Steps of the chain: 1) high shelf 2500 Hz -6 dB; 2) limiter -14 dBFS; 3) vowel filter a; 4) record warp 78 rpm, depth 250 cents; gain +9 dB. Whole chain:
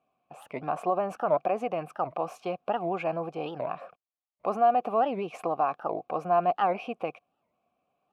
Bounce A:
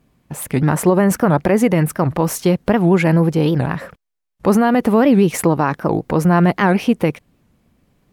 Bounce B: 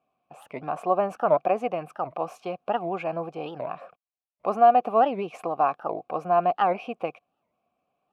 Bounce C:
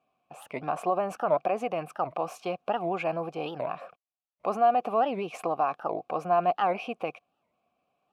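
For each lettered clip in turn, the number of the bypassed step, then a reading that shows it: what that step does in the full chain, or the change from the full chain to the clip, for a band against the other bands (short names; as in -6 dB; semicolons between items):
3, 1 kHz band -15.5 dB; 2, crest factor change +2.0 dB; 1, 2 kHz band +2.0 dB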